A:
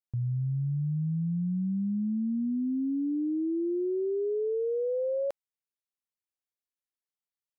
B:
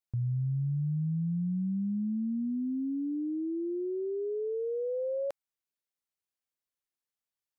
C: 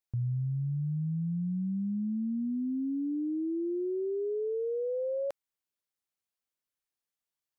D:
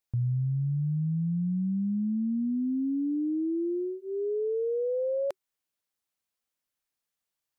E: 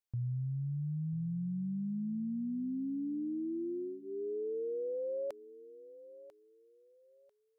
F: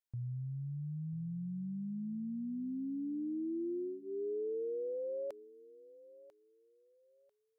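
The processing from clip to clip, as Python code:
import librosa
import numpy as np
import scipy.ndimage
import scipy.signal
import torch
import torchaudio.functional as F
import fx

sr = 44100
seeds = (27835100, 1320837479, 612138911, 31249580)

y1 = fx.dynamic_eq(x, sr, hz=370.0, q=0.85, threshold_db=-42.0, ratio=4.0, max_db=-4)
y2 = fx.rider(y1, sr, range_db=10, speed_s=0.5)
y3 = fx.notch(y2, sr, hz=380.0, q=12.0)
y3 = y3 * 10.0 ** (3.5 / 20.0)
y4 = fx.echo_feedback(y3, sr, ms=994, feedback_pct=26, wet_db=-16.5)
y4 = y4 * 10.0 ** (-8.0 / 20.0)
y5 = fx.dynamic_eq(y4, sr, hz=380.0, q=1.6, threshold_db=-50.0, ratio=4.0, max_db=5)
y5 = y5 * 10.0 ** (-4.5 / 20.0)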